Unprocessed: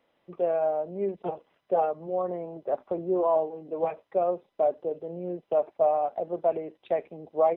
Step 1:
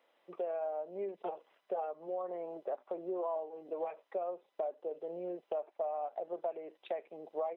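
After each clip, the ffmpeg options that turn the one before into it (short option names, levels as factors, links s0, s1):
-af "highpass=440,acompressor=threshold=0.0158:ratio=4"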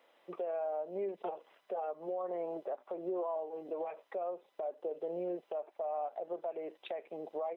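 -af "alimiter=level_in=3.35:limit=0.0631:level=0:latency=1:release=179,volume=0.299,volume=1.78"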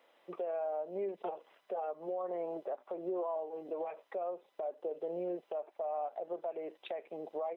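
-af anull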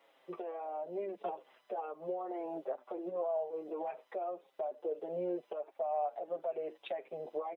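-filter_complex "[0:a]asplit=2[s0][s1];[s1]adelay=6.8,afreqshift=-1.6[s2];[s0][s2]amix=inputs=2:normalize=1,volume=1.5"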